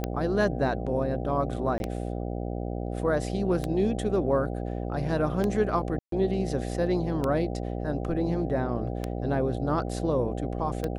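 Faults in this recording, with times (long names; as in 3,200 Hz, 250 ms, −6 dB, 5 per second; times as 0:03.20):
mains buzz 60 Hz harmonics 13 −32 dBFS
scratch tick 33 1/3 rpm −15 dBFS
0:01.78–0:01.80: drop-out 21 ms
0:05.99–0:06.12: drop-out 133 ms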